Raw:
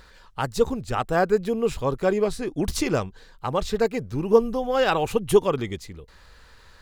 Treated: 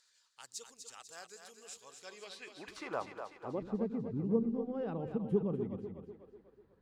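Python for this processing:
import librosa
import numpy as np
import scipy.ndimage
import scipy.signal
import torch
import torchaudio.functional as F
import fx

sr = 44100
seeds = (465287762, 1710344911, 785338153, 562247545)

y = fx.filter_sweep_bandpass(x, sr, from_hz=7000.0, to_hz=200.0, start_s=1.93, end_s=3.77, q=2.1)
y = fx.echo_split(y, sr, split_hz=340.0, low_ms=92, high_ms=247, feedback_pct=52, wet_db=-7)
y = F.gain(torch.from_numpy(y), -5.0).numpy()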